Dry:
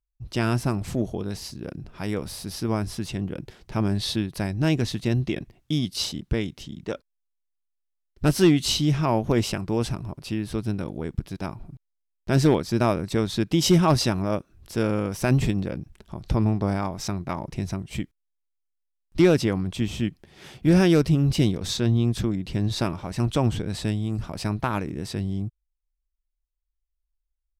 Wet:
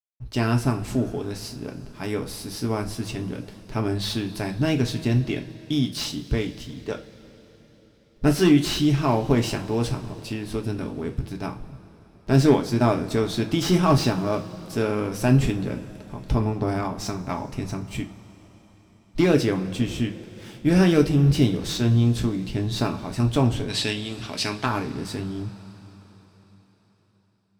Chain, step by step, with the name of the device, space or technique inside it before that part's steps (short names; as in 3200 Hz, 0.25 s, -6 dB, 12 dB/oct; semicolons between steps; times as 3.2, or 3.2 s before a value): early transistor amplifier (crossover distortion -55 dBFS; slew limiter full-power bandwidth 190 Hz); 23.68–24.66 weighting filter D; two-slope reverb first 0.26 s, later 4.5 s, from -22 dB, DRR 3 dB